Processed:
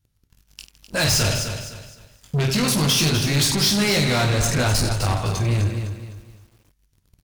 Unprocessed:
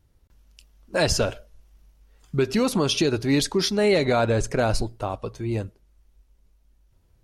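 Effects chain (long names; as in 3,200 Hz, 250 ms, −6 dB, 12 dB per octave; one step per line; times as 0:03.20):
parametric band 140 Hz +10 dB 1.1 octaves
in parallel at −2.5 dB: speech leveller 0.5 s
on the sum: guitar amp tone stack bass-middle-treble 5-5-5
on a send: reverse bouncing-ball delay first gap 20 ms, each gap 1.5×, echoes 5
on the sum: soft clipping −18.5 dBFS, distortion −20 dB
leveller curve on the samples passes 3
hum removal 65.28 Hz, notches 38
feedback echo at a low word length 255 ms, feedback 35%, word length 9 bits, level −9 dB
level +3.5 dB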